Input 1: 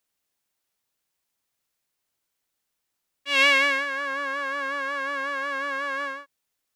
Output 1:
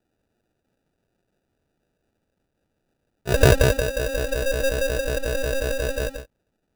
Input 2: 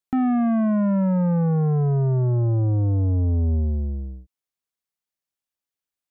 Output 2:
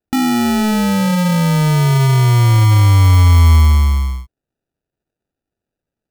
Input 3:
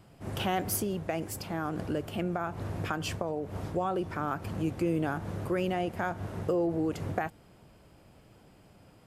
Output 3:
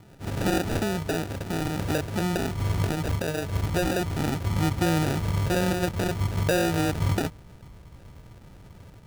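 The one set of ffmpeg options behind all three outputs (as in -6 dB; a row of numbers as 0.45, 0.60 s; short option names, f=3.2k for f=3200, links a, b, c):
-af "asubboost=boost=3:cutoff=150,acrusher=samples=41:mix=1:aa=0.000001,volume=5.5dB"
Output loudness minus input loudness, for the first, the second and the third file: +1.0, +9.0, +6.0 LU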